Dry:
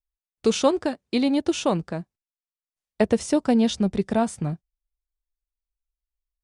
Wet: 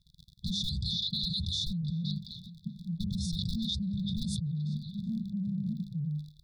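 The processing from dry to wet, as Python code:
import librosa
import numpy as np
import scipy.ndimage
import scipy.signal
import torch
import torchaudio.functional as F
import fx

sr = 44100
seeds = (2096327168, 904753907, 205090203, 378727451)

p1 = scipy.signal.sosfilt(scipy.signal.butter(2, 82.0, 'highpass', fs=sr, output='sos'), x)
p2 = fx.peak_eq(p1, sr, hz=750.0, db=2.5, octaves=0.21)
p3 = fx.hum_notches(p2, sr, base_hz=50, count=7)
p4 = (np.mod(10.0 ** (13.0 / 20.0) * p3 + 1.0, 2.0) - 1.0) / 10.0 ** (13.0 / 20.0)
p5 = p3 + F.gain(torch.from_numpy(p4), -8.0).numpy()
p6 = fx.dmg_crackle(p5, sr, seeds[0], per_s=49.0, level_db=-50.0)
p7 = fx.brickwall_bandstop(p6, sr, low_hz=190.0, high_hz=3400.0)
p8 = fx.air_absorb(p7, sr, metres=420.0)
p9 = p8 + fx.echo_stepped(p8, sr, ms=383, hz=3500.0, octaves=-1.4, feedback_pct=70, wet_db=-11, dry=0)
p10 = fx.env_flatten(p9, sr, amount_pct=100)
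y = F.gain(torch.from_numpy(p10), -7.5).numpy()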